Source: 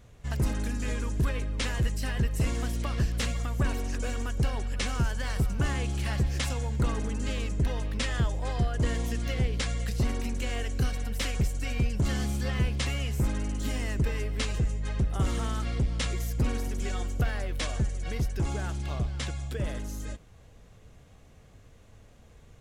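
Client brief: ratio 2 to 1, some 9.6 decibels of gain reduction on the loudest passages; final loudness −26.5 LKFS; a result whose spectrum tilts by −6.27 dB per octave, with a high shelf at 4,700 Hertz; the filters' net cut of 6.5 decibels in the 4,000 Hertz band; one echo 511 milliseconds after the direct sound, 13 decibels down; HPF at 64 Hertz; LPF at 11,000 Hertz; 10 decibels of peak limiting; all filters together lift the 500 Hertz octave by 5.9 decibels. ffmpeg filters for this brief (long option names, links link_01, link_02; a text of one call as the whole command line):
ffmpeg -i in.wav -af "highpass=64,lowpass=11000,equalizer=frequency=500:width_type=o:gain=7,equalizer=frequency=4000:width_type=o:gain=-7,highshelf=frequency=4700:gain=-4.5,acompressor=threshold=-40dB:ratio=2,alimiter=level_in=8dB:limit=-24dB:level=0:latency=1,volume=-8dB,aecho=1:1:511:0.224,volume=15dB" out.wav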